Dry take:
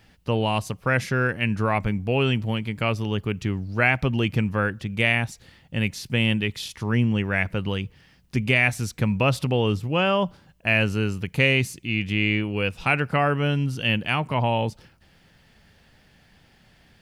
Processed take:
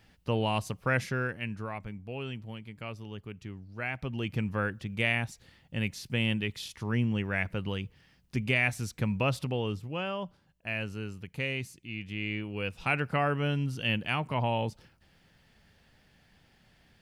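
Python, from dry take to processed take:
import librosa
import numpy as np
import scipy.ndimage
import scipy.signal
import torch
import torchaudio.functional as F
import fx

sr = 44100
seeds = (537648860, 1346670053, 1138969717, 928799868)

y = fx.gain(x, sr, db=fx.line((0.95, -5.5), (1.79, -16.0), (3.78, -16.0), (4.5, -7.0), (9.23, -7.0), (10.16, -13.5), (12.05, -13.5), (12.97, -6.5)))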